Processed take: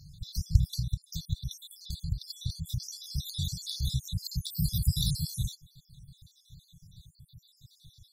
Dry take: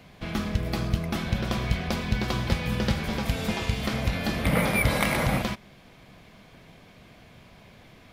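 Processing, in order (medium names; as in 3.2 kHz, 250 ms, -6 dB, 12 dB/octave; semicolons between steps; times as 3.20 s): random holes in the spectrogram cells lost 62%; 0.79–2.82 s: compression 12:1, threshold -31 dBFS, peak gain reduction 14.5 dB; brick-wall FIR band-stop 170–3400 Hz; trim +5.5 dB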